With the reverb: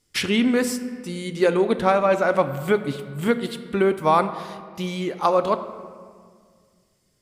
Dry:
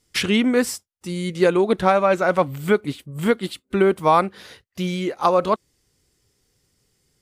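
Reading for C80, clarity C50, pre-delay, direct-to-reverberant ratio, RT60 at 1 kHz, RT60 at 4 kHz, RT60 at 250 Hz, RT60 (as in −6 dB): 13.0 dB, 11.5 dB, 3 ms, 9.5 dB, 1.8 s, 1.2 s, 2.4 s, 1.9 s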